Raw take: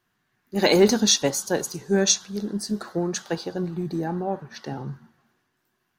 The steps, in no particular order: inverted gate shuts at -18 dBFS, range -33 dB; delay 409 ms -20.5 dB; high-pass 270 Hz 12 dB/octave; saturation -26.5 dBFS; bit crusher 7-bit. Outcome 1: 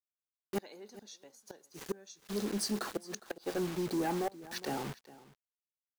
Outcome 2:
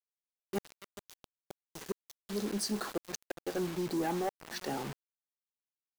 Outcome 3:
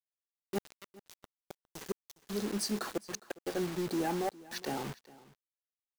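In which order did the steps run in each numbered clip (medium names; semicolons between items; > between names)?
high-pass > bit crusher > inverted gate > delay > saturation; high-pass > inverted gate > delay > bit crusher > saturation; high-pass > inverted gate > saturation > bit crusher > delay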